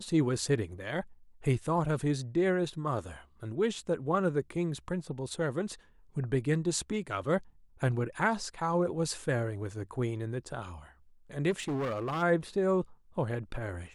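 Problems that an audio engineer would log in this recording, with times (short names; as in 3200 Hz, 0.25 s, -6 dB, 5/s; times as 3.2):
11.5–12.23 clipped -29.5 dBFS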